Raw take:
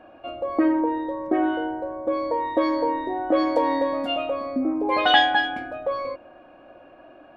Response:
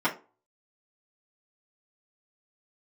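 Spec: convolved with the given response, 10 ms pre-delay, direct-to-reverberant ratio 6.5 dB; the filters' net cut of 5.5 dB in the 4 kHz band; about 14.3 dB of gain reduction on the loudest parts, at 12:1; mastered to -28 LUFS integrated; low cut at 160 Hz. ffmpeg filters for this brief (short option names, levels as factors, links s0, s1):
-filter_complex "[0:a]highpass=160,equalizer=f=4000:t=o:g=-8,acompressor=threshold=0.0447:ratio=12,asplit=2[s0][s1];[1:a]atrim=start_sample=2205,adelay=10[s2];[s1][s2]afir=irnorm=-1:irlink=0,volume=0.112[s3];[s0][s3]amix=inputs=2:normalize=0,volume=1.5"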